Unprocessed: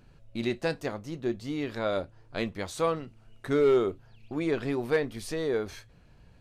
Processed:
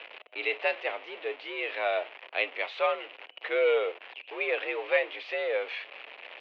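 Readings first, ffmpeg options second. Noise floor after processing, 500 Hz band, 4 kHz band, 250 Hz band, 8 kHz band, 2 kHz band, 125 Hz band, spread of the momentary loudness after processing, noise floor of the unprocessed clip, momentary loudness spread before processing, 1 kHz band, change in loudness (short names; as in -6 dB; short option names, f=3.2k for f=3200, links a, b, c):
-53 dBFS, -1.0 dB, +4.0 dB, -17.0 dB, under -25 dB, +7.5 dB, under -40 dB, 14 LU, -57 dBFS, 14 LU, +2.0 dB, 0.0 dB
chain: -af "aeval=exprs='val(0)+0.5*0.0133*sgn(val(0))':c=same,aexciter=amount=6.3:drive=2.3:freq=2.1k,highpass=f=410:t=q:w=0.5412,highpass=f=410:t=q:w=1.307,lowpass=f=2.7k:t=q:w=0.5176,lowpass=f=2.7k:t=q:w=0.7071,lowpass=f=2.7k:t=q:w=1.932,afreqshift=68"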